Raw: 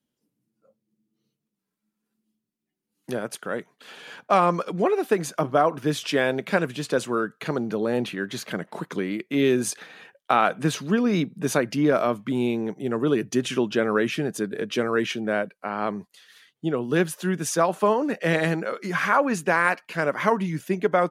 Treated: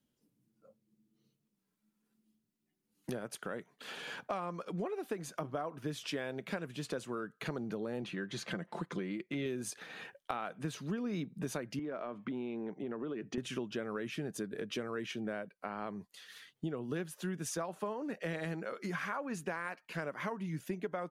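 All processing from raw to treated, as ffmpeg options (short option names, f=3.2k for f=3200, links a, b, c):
-filter_complex "[0:a]asettb=1/sr,asplit=3[a][b][c];[a]atrim=end=8.024[d];[b]atrim=start=8.02:end=9.46,asetpts=PTS-STARTPTS,afade=t=in:d=0.004:c=qsin,afade=t=out:st=1.436:d=0.004:c=qsin,lowpass=8.1k,aecho=1:1:5.8:0.41,atrim=end_sample=63504[e];[c]atrim=start=9.456[f];[d][e]acrossfade=d=0.004:c1=hsin:c2=qsin[g];[g][f]acrossfade=d=0.004:c1=qsin:c2=hsin,asettb=1/sr,asplit=3[h][i][j];[h]atrim=end=11.794[k];[i]atrim=start=11.79:end=13.38,asetpts=PTS-STARTPTS,afade=t=in:d=0.004:c=qsin,afade=t=out:st=1.586:d=0.004:c=qsin,highpass=200,lowpass=2.8k,acompressor=threshold=-28dB:ratio=3:attack=3.2:release=140:knee=1:detection=peak[l];[j]atrim=start=13.376[m];[k][l]acrossfade=d=0.004:c1=hsin:c2=qsin[n];[n][m]acrossfade=d=0.004:c1=qsin:c2=hsin,acompressor=threshold=-38dB:ratio=4,lowshelf=f=110:g=8,volume=-1dB"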